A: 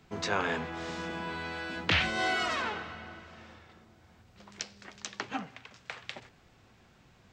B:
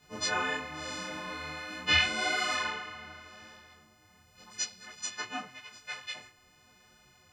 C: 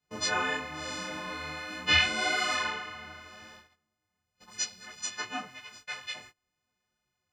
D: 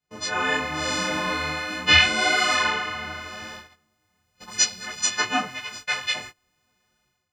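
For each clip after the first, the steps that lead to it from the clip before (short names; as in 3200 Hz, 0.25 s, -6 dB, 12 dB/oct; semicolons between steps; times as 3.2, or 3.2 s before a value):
frequency quantiser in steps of 3 st; detuned doubles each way 30 cents
gate -53 dBFS, range -23 dB; gain +1.5 dB
AGC gain up to 14 dB; gain -1.5 dB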